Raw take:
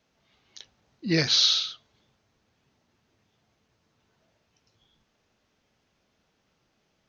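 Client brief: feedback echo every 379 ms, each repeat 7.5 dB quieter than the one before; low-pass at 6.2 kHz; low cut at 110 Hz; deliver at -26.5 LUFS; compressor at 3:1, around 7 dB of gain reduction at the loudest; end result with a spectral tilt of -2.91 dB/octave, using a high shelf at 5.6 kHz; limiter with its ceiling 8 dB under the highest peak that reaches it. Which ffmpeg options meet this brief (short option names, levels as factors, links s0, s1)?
-af "highpass=110,lowpass=6200,highshelf=f=5600:g=7.5,acompressor=threshold=0.0562:ratio=3,alimiter=limit=0.0708:level=0:latency=1,aecho=1:1:379|758|1137|1516|1895:0.422|0.177|0.0744|0.0312|0.0131,volume=2.37"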